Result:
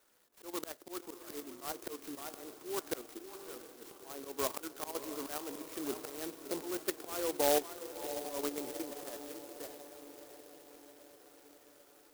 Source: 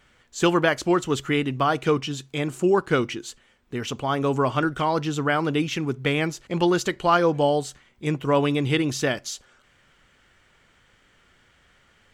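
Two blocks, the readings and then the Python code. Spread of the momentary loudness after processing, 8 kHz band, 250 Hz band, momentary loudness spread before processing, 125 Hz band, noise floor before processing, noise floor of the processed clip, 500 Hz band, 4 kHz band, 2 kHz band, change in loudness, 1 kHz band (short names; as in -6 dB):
17 LU, -6.0 dB, -19.0 dB, 11 LU, -33.5 dB, -61 dBFS, -62 dBFS, -15.0 dB, -14.5 dB, -20.5 dB, -15.5 dB, -18.0 dB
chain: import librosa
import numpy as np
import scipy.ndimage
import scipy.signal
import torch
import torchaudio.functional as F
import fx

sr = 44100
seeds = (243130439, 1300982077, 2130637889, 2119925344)

p1 = scipy.signal.sosfilt(scipy.signal.butter(4, 2600.0, 'lowpass', fs=sr, output='sos'), x)
p2 = p1 + 10.0 ** (-21.5 / 20.0) * np.pad(p1, (int(565 * sr / 1000.0), 0))[:len(p1)]
p3 = fx.level_steps(p2, sr, step_db=11)
p4 = scipy.signal.sosfilt(scipy.signal.butter(4, 310.0, 'highpass', fs=sr, output='sos'), p3)
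p5 = fx.rider(p4, sr, range_db=4, speed_s=0.5)
p6 = fx.auto_swell(p5, sr, attack_ms=474.0)
p7 = p6 + fx.echo_diffused(p6, sr, ms=682, feedback_pct=60, wet_db=-11, dry=0)
y = fx.clock_jitter(p7, sr, seeds[0], jitter_ms=0.14)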